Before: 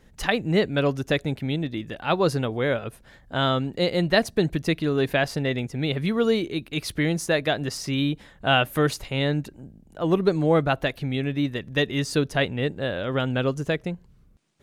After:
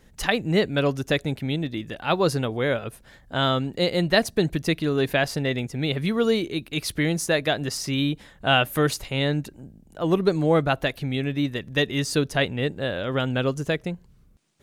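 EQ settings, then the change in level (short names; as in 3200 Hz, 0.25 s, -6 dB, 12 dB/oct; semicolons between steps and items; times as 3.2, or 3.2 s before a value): high shelf 4700 Hz +5 dB; 0.0 dB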